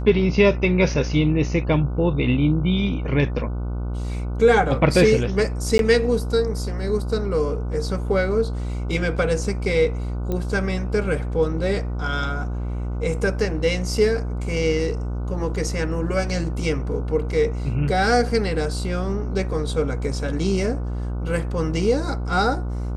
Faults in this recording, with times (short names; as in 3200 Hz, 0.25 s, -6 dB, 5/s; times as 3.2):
buzz 60 Hz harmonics 25 -26 dBFS
5.78–5.79 gap 12 ms
10.32 pop -14 dBFS